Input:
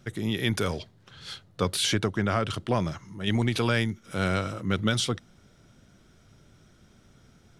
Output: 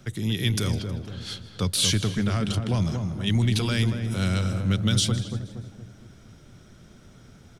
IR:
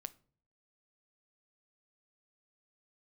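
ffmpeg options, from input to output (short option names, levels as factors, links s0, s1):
-filter_complex "[0:a]asplit=2[s0][s1];[s1]asplit=4[s2][s3][s4][s5];[s2]adelay=158,afreqshift=77,volume=0.119[s6];[s3]adelay=316,afreqshift=154,volume=0.055[s7];[s4]adelay=474,afreqshift=231,volume=0.0251[s8];[s5]adelay=632,afreqshift=308,volume=0.0116[s9];[s6][s7][s8][s9]amix=inputs=4:normalize=0[s10];[s0][s10]amix=inputs=2:normalize=0,acrossover=split=210|3000[s11][s12][s13];[s12]acompressor=threshold=0.001:ratio=1.5[s14];[s11][s14][s13]amix=inputs=3:normalize=0,asplit=2[s15][s16];[s16]adelay=234,lowpass=f=820:p=1,volume=0.596,asplit=2[s17][s18];[s18]adelay=234,lowpass=f=820:p=1,volume=0.48,asplit=2[s19][s20];[s20]adelay=234,lowpass=f=820:p=1,volume=0.48,asplit=2[s21][s22];[s22]adelay=234,lowpass=f=820:p=1,volume=0.48,asplit=2[s23][s24];[s24]adelay=234,lowpass=f=820:p=1,volume=0.48,asplit=2[s25][s26];[s26]adelay=234,lowpass=f=820:p=1,volume=0.48[s27];[s17][s19][s21][s23][s25][s27]amix=inputs=6:normalize=0[s28];[s15][s28]amix=inputs=2:normalize=0,volume=1.88"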